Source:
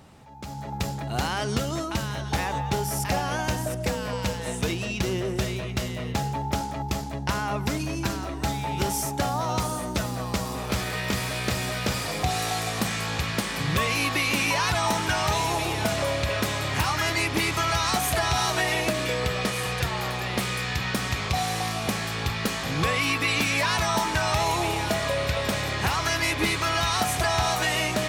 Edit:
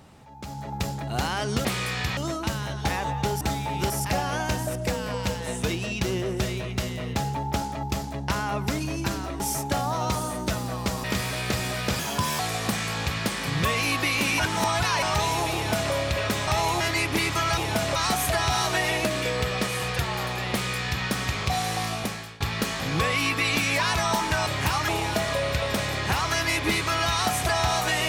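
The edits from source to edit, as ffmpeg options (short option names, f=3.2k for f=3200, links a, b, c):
-filter_complex "[0:a]asplit=18[a][b][c][d][e][f][g][h][i][j][k][l][m][n][o][p][q][r];[a]atrim=end=1.652[s];[b]atrim=start=20.358:end=20.882[t];[c]atrim=start=1.648:end=2.892[u];[d]atrim=start=8.388:end=8.882[v];[e]atrim=start=2.888:end=8.392[w];[f]atrim=start=8.878:end=10.522[x];[g]atrim=start=11.018:end=11.974[y];[h]atrim=start=11.97:end=12.52,asetpts=PTS-STARTPTS,asetrate=59976,aresample=44100[z];[i]atrim=start=12.516:end=14.522[aa];[j]atrim=start=14.518:end=15.152,asetpts=PTS-STARTPTS,areverse[ab];[k]atrim=start=15.148:end=16.602[ac];[l]atrim=start=24.298:end=24.632[ad];[m]atrim=start=17.018:end=17.792[ae];[n]atrim=start=15.668:end=16.052[af];[o]atrim=start=17.788:end=22.24,asetpts=PTS-STARTPTS,afade=t=out:st=3.962:d=0.49:silence=0.0794328[ag];[p]atrim=start=22.24:end=24.302,asetpts=PTS-STARTPTS,afade=t=in:d=0.004:c=hsin:silence=0.0794328[ah];[q]atrim=start=16.598:end=17.022[ai];[r]atrim=start=24.628[aj];[s][t]acrossfade=d=0.004:c1=hsin:c2=hsin[ak];[ak][u]acrossfade=d=0.004:c1=hsin:c2=hsin[al];[al][v]acrossfade=d=0.004:c1=hsin:c2=hsin[am];[am][w]acrossfade=d=0.004:c1=hsin:c2=hsin[an];[an][x]acrossfade=d=0.004:c1=hsin:c2=hsin[ao];[ao][y]acrossfade=d=0.004:c1=hsin:c2=hsin[ap];[ap][z]acrossfade=d=0.004:c1=hsin:c2=hsin[aq];[aq][aa]acrossfade=d=0.004:c1=hsin:c2=hsin[ar];[ar][ab]acrossfade=d=0.004:c1=hsin:c2=hsin[as];[as][ac]acrossfade=d=0.004:c1=hsin:c2=hsin[at];[at][ad]acrossfade=d=0.004:c1=hsin:c2=hsin[au];[au][ae]acrossfade=d=0.004:c1=hsin:c2=hsin[av];[av][af]acrossfade=d=0.004:c1=hsin:c2=hsin[aw];[ag][ah]concat=n=2:v=0:a=1[ax];[aw][ax]acrossfade=d=0.004:c1=hsin:c2=hsin[ay];[ay][ai]acrossfade=d=0.004:c1=hsin:c2=hsin[az];[az][aj]acrossfade=d=0.004:c1=hsin:c2=hsin"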